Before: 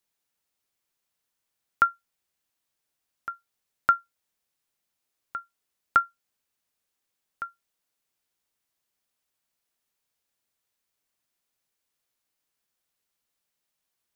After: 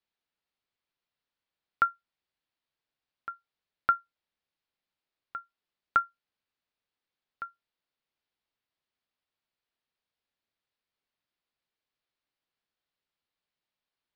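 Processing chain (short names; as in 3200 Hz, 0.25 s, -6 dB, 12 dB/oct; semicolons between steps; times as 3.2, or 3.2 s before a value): steep low-pass 4700 Hz; gain -4 dB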